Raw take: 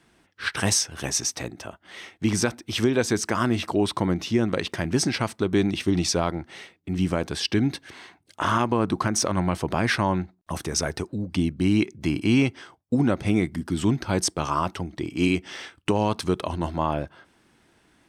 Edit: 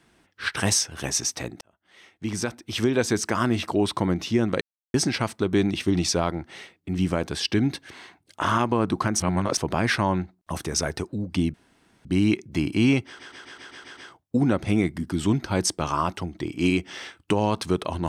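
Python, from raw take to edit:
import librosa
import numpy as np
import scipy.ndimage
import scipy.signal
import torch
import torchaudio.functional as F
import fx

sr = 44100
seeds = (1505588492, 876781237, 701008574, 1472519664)

y = fx.edit(x, sr, fx.fade_in_span(start_s=1.61, length_s=1.39),
    fx.silence(start_s=4.61, length_s=0.33),
    fx.reverse_span(start_s=9.2, length_s=0.37),
    fx.insert_room_tone(at_s=11.54, length_s=0.51),
    fx.stutter(start_s=12.55, slice_s=0.13, count=8), tone=tone)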